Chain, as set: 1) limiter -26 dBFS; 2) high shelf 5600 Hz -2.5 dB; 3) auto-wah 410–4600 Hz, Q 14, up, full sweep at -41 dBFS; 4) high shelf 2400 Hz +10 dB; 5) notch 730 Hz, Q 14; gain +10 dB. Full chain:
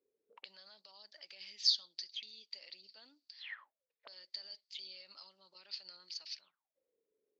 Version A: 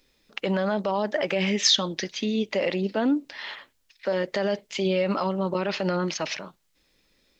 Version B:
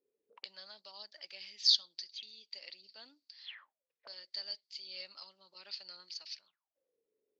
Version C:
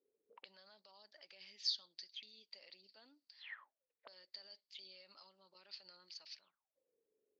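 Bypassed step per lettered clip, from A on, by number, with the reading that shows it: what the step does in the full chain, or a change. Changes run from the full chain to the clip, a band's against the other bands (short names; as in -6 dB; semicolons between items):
3, 4 kHz band -23.0 dB; 1, mean gain reduction 2.5 dB; 4, 4 kHz band -6.0 dB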